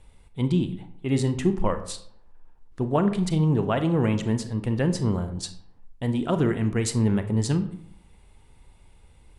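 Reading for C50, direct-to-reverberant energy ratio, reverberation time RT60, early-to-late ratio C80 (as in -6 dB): 12.0 dB, 9.0 dB, 0.65 s, 15.0 dB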